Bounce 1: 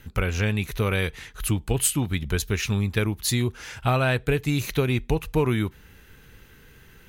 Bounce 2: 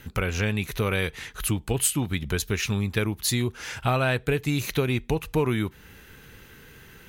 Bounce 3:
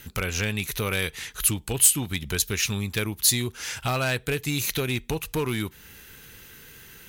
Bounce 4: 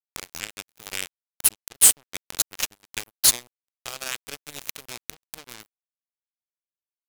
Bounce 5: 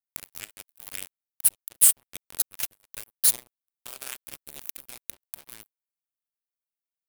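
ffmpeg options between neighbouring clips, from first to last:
ffmpeg -i in.wav -filter_complex "[0:a]lowshelf=frequency=65:gain=-9,asplit=2[link_01][link_02];[link_02]acompressor=threshold=-33dB:ratio=6,volume=2dB[link_03];[link_01][link_03]amix=inputs=2:normalize=0,volume=-3dB" out.wav
ffmpeg -i in.wav -af "volume=17.5dB,asoftclip=hard,volume=-17.5dB,highshelf=frequency=3100:gain=12,volume=-3dB" out.wav
ffmpeg -i in.wav -af "acrusher=bits=2:mix=0:aa=0.5,volume=3dB" out.wav
ffmpeg -i in.wav -af "aexciter=amount=2.9:drive=6.2:freq=8800,aphaser=in_gain=1:out_gain=1:delay=2.1:decay=0.27:speed=0.87:type=sinusoidal,aeval=exprs='val(0)*sin(2*PI*110*n/s)':channel_layout=same,volume=-6.5dB" out.wav

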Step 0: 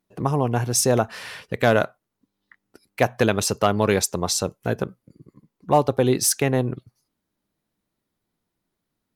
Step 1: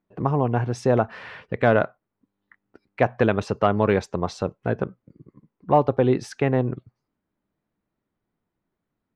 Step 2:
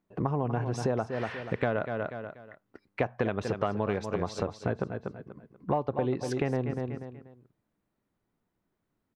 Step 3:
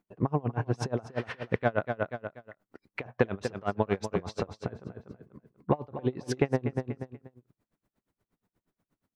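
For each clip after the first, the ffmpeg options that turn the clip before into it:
ffmpeg -i in.wav -af "lowpass=2100" out.wav
ffmpeg -i in.wav -af "aecho=1:1:242|484|726:0.299|0.0836|0.0234,acompressor=threshold=-26dB:ratio=5" out.wav
ffmpeg -i in.wav -af "aeval=exprs='val(0)*pow(10,-28*(0.5-0.5*cos(2*PI*8.4*n/s))/20)':channel_layout=same,volume=6dB" out.wav

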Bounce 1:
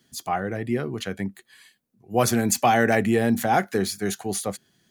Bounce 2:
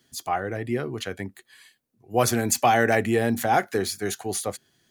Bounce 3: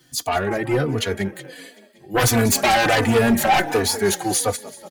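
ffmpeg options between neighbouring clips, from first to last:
ffmpeg -i in.wav -af "equalizer=frequency=190:width=3:gain=-9" out.wav
ffmpeg -i in.wav -filter_complex "[0:a]asplit=6[link_01][link_02][link_03][link_04][link_05][link_06];[link_02]adelay=188,afreqshift=37,volume=-18dB[link_07];[link_03]adelay=376,afreqshift=74,volume=-22.7dB[link_08];[link_04]adelay=564,afreqshift=111,volume=-27.5dB[link_09];[link_05]adelay=752,afreqshift=148,volume=-32.2dB[link_10];[link_06]adelay=940,afreqshift=185,volume=-36.9dB[link_11];[link_01][link_07][link_08][link_09][link_10][link_11]amix=inputs=6:normalize=0,aeval=exprs='0.473*sin(PI/2*3.98*val(0)/0.473)':channel_layout=same,asplit=2[link_12][link_13];[link_13]adelay=3.4,afreqshift=-1.4[link_14];[link_12][link_14]amix=inputs=2:normalize=1,volume=-3.5dB" out.wav

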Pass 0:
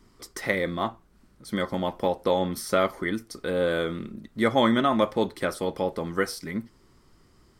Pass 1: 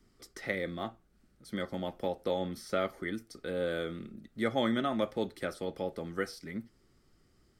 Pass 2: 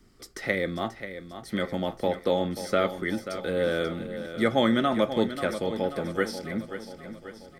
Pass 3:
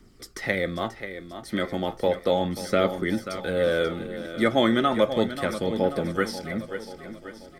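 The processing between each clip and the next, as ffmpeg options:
ffmpeg -i in.wav -filter_complex "[0:a]equalizer=frequency=1000:width=6.2:gain=-13,acrossover=split=240|6000[link_01][link_02][link_03];[link_03]alimiter=level_in=13.5dB:limit=-24dB:level=0:latency=1:release=324,volume=-13.5dB[link_04];[link_01][link_02][link_04]amix=inputs=3:normalize=0,volume=-8dB" out.wav
ffmpeg -i in.wav -af "aecho=1:1:536|1072|1608|2144|2680|3216:0.282|0.152|0.0822|0.0444|0.024|0.0129,volume=7dB" out.wav
ffmpeg -i in.wav -af "aphaser=in_gain=1:out_gain=1:delay=3.4:decay=0.3:speed=0.34:type=triangular,volume=2dB" out.wav

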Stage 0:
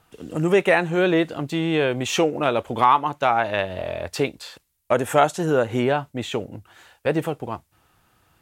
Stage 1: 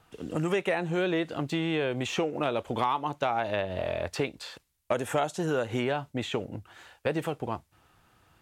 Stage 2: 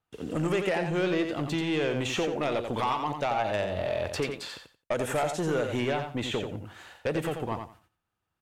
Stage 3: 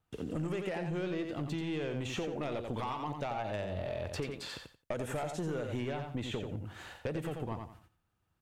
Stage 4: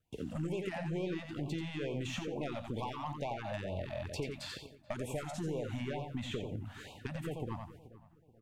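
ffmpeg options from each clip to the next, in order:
ffmpeg -i in.wav -filter_complex "[0:a]highshelf=frequency=10000:gain=-8.5,acrossover=split=930|2800[link_01][link_02][link_03];[link_01]acompressor=threshold=-26dB:ratio=4[link_04];[link_02]acompressor=threshold=-36dB:ratio=4[link_05];[link_03]acompressor=threshold=-39dB:ratio=4[link_06];[link_04][link_05][link_06]amix=inputs=3:normalize=0,volume=-1dB" out.wav
ffmpeg -i in.wav -filter_complex "[0:a]agate=range=-24dB:threshold=-57dB:ratio=16:detection=peak,asoftclip=type=tanh:threshold=-23.5dB,asplit=2[link_01][link_02];[link_02]aecho=0:1:88|176|264:0.473|0.0946|0.0189[link_03];[link_01][link_03]amix=inputs=2:normalize=0,volume=2dB" out.wav
ffmpeg -i in.wav -af "lowshelf=frequency=260:gain=8.5,acompressor=threshold=-39dB:ratio=2.5" out.wav
ffmpeg -i in.wav -filter_complex "[0:a]asplit=2[link_01][link_02];[link_02]adelay=431,lowpass=frequency=1300:poles=1,volume=-16.5dB,asplit=2[link_03][link_04];[link_04]adelay=431,lowpass=frequency=1300:poles=1,volume=0.39,asplit=2[link_05][link_06];[link_06]adelay=431,lowpass=frequency=1300:poles=1,volume=0.39[link_07];[link_01][link_03][link_05][link_07]amix=inputs=4:normalize=0,afftfilt=real='re*(1-between(b*sr/1024,360*pow(1600/360,0.5+0.5*sin(2*PI*2.2*pts/sr))/1.41,360*pow(1600/360,0.5+0.5*sin(2*PI*2.2*pts/sr))*1.41))':imag='im*(1-between(b*sr/1024,360*pow(1600/360,0.5+0.5*sin(2*PI*2.2*pts/sr))/1.41,360*pow(1600/360,0.5+0.5*sin(2*PI*2.2*pts/sr))*1.41))':win_size=1024:overlap=0.75,volume=-1dB" out.wav

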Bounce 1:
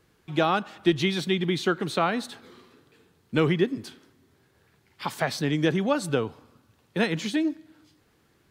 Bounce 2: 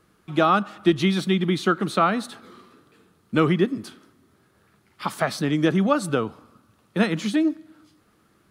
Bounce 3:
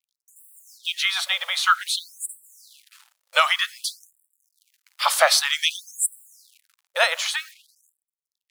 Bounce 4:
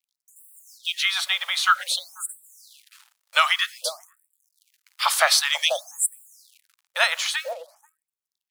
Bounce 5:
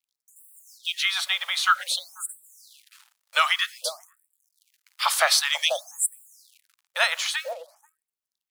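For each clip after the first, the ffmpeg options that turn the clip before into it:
ffmpeg -i in.wav -af "equalizer=frequency=200:width_type=o:width=0.33:gain=8,equalizer=frequency=315:width_type=o:width=0.33:gain=4,equalizer=frequency=630:width_type=o:width=0.33:gain=4,equalizer=frequency=1250:width_type=o:width=0.33:gain=10,equalizer=frequency=10000:width_type=o:width=0.33:gain=6" out.wav
ffmpeg -i in.wav -filter_complex "[0:a]acrossover=split=140|610|2700[link_01][link_02][link_03][link_04];[link_04]dynaudnorm=framelen=250:gausssize=17:maxgain=10dB[link_05];[link_01][link_02][link_03][link_05]amix=inputs=4:normalize=0,acrusher=bits=7:mix=0:aa=0.5,afftfilt=real='re*gte(b*sr/1024,480*pow(7600/480,0.5+0.5*sin(2*PI*0.53*pts/sr)))':imag='im*gte(b*sr/1024,480*pow(7600/480,0.5+0.5*sin(2*PI*0.53*pts/sr)))':win_size=1024:overlap=0.75,volume=6.5dB" out.wav
ffmpeg -i in.wav -filter_complex "[0:a]acrossover=split=610[link_01][link_02];[link_01]adelay=490[link_03];[link_03][link_02]amix=inputs=2:normalize=0" out.wav
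ffmpeg -i in.wav -af "apsyclip=7dB,volume=-8.5dB" out.wav

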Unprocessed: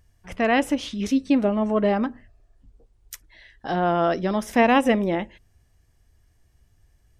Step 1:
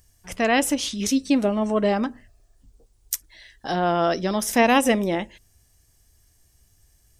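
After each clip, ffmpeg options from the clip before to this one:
ffmpeg -i in.wav -af "bass=frequency=250:gain=-1,treble=frequency=4000:gain=14" out.wav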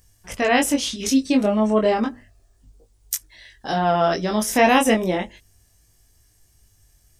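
ffmpeg -i in.wav -af "flanger=delay=19:depth=4.3:speed=0.33,volume=5dB" out.wav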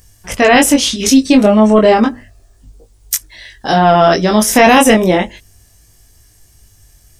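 ffmpeg -i in.wav -af "apsyclip=12.5dB,volume=-1.5dB" out.wav

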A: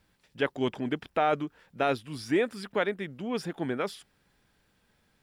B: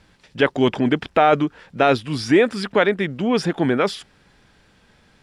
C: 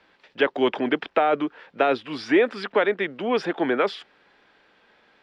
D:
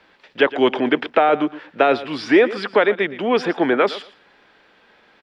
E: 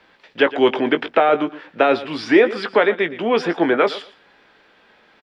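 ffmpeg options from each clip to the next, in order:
ffmpeg -i in.wav -filter_complex "[0:a]lowpass=7400,asplit=2[link_01][link_02];[link_02]alimiter=level_in=1.5dB:limit=-24dB:level=0:latency=1:release=22,volume=-1.5dB,volume=-1.5dB[link_03];[link_01][link_03]amix=inputs=2:normalize=0,volume=8.5dB" out.wav
ffmpeg -i in.wav -filter_complex "[0:a]acrossover=split=290 4200:gain=0.0794 1 0.0708[link_01][link_02][link_03];[link_01][link_02][link_03]amix=inputs=3:normalize=0,acrossover=split=380[link_04][link_05];[link_05]acompressor=threshold=-18dB:ratio=6[link_06];[link_04][link_06]amix=inputs=2:normalize=0" out.wav
ffmpeg -i in.wav -af "aecho=1:1:116|232:0.158|0.0285,volume=5dB" out.wav
ffmpeg -i in.wav -filter_complex "[0:a]asplit=2[link_01][link_02];[link_02]adelay=18,volume=-10dB[link_03];[link_01][link_03]amix=inputs=2:normalize=0" out.wav

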